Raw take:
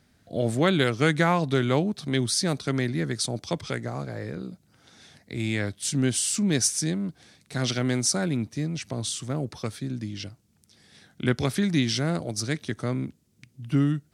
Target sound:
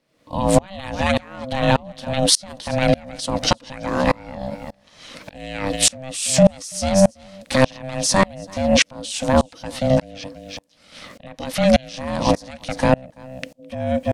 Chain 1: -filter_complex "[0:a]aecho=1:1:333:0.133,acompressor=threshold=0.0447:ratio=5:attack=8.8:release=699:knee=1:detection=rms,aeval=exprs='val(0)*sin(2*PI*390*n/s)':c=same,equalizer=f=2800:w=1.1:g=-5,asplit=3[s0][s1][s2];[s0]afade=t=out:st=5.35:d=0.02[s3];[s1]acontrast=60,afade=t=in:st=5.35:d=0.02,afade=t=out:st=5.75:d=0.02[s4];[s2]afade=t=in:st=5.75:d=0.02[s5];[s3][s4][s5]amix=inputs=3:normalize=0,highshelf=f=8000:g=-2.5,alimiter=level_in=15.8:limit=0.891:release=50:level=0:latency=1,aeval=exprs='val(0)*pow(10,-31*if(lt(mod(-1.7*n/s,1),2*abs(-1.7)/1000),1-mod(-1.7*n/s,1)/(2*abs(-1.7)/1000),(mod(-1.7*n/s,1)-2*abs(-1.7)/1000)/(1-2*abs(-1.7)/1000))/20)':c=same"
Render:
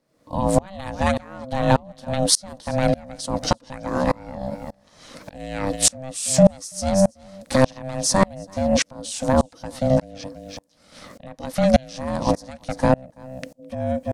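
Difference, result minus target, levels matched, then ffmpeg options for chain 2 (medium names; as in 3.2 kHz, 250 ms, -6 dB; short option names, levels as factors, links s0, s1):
compression: peak gain reduction +5 dB; 2 kHz band -3.5 dB
-filter_complex "[0:a]aecho=1:1:333:0.133,acompressor=threshold=0.0944:ratio=5:attack=8.8:release=699:knee=1:detection=rms,aeval=exprs='val(0)*sin(2*PI*390*n/s)':c=same,equalizer=f=2800:w=1.1:g=4,asplit=3[s0][s1][s2];[s0]afade=t=out:st=5.35:d=0.02[s3];[s1]acontrast=60,afade=t=in:st=5.35:d=0.02,afade=t=out:st=5.75:d=0.02[s4];[s2]afade=t=in:st=5.75:d=0.02[s5];[s3][s4][s5]amix=inputs=3:normalize=0,highshelf=f=8000:g=-2.5,alimiter=level_in=15.8:limit=0.891:release=50:level=0:latency=1,aeval=exprs='val(0)*pow(10,-31*if(lt(mod(-1.7*n/s,1),2*abs(-1.7)/1000),1-mod(-1.7*n/s,1)/(2*abs(-1.7)/1000),(mod(-1.7*n/s,1)-2*abs(-1.7)/1000)/(1-2*abs(-1.7)/1000))/20)':c=same"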